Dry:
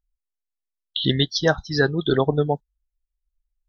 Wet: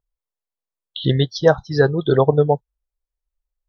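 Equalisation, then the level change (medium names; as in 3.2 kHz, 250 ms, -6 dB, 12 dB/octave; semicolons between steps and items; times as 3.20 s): ten-band graphic EQ 125 Hz +11 dB, 500 Hz +11 dB, 1 kHz +8 dB; -5.0 dB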